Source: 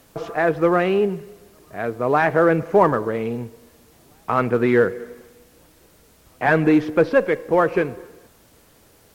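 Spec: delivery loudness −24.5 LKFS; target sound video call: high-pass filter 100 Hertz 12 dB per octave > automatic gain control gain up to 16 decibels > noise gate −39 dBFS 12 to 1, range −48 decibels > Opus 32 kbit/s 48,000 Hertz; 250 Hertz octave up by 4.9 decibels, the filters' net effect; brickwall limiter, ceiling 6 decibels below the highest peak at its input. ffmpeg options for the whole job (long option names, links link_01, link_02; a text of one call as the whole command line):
ffmpeg -i in.wav -af "equalizer=frequency=250:width_type=o:gain=7,alimiter=limit=-8dB:level=0:latency=1,highpass=100,dynaudnorm=maxgain=16dB,agate=range=-48dB:threshold=-39dB:ratio=12,volume=-5dB" -ar 48000 -c:a libopus -b:a 32k out.opus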